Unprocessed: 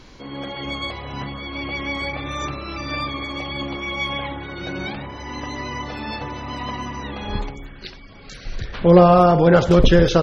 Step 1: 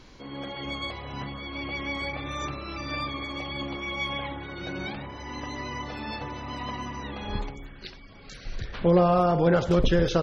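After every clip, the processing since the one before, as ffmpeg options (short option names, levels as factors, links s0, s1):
-af "alimiter=limit=0.473:level=0:latency=1:release=385,volume=0.531"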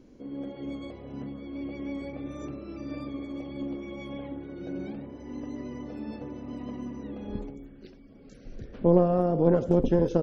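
-af "equalizer=f=250:t=o:w=1:g=12,equalizer=f=500:t=o:w=1:g=7,equalizer=f=1000:t=o:w=1:g=-8,equalizer=f=2000:t=o:w=1:g=-5,equalizer=f=4000:t=o:w=1:g=-11,aeval=exprs='0.794*(cos(1*acos(clip(val(0)/0.794,-1,1)))-cos(1*PI/2))+0.2*(cos(2*acos(clip(val(0)/0.794,-1,1)))-cos(2*PI/2))':c=same,volume=0.376"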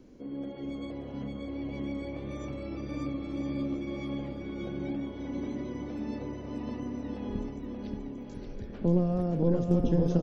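-filter_complex "[0:a]acrossover=split=270|3000[s0][s1][s2];[s1]acompressor=threshold=0.0112:ratio=2.5[s3];[s0][s3][s2]amix=inputs=3:normalize=0,asplit=2[s4][s5];[s5]aecho=0:1:580|1015|1341|1586|1769:0.631|0.398|0.251|0.158|0.1[s6];[s4][s6]amix=inputs=2:normalize=0"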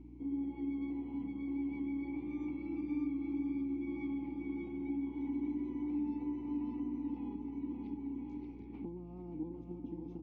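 -filter_complex "[0:a]acompressor=threshold=0.0178:ratio=6,asplit=3[s0][s1][s2];[s0]bandpass=f=300:t=q:w=8,volume=1[s3];[s1]bandpass=f=870:t=q:w=8,volume=0.501[s4];[s2]bandpass=f=2240:t=q:w=8,volume=0.355[s5];[s3][s4][s5]amix=inputs=3:normalize=0,aeval=exprs='val(0)+0.001*(sin(2*PI*60*n/s)+sin(2*PI*2*60*n/s)/2+sin(2*PI*3*60*n/s)/3+sin(2*PI*4*60*n/s)/4+sin(2*PI*5*60*n/s)/5)':c=same,volume=2.11"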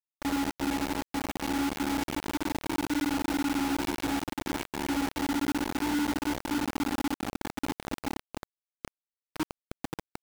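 -af "acrusher=bits=5:mix=0:aa=0.000001,volume=1.88"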